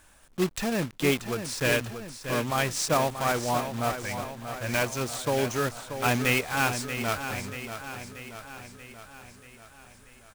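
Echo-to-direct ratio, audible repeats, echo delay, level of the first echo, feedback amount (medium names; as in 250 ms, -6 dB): -7.5 dB, 6, 634 ms, -9.5 dB, 58%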